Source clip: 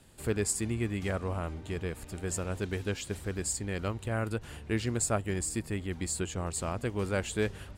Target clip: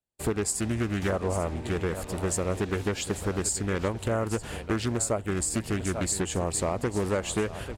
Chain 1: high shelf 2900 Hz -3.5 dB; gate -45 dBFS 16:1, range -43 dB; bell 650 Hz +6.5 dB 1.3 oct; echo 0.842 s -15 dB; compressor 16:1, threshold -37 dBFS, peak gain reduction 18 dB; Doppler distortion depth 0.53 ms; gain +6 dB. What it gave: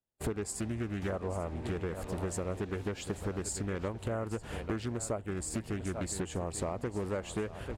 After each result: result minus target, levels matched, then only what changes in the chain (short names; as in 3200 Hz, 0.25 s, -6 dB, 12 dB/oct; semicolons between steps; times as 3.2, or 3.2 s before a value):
compressor: peak gain reduction +7 dB; 8000 Hz band -3.0 dB
change: compressor 16:1, threshold -29 dBFS, peak gain reduction 10.5 dB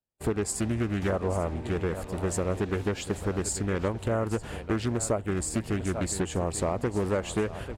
8000 Hz band -3.5 dB
change: high shelf 2900 Hz +3.5 dB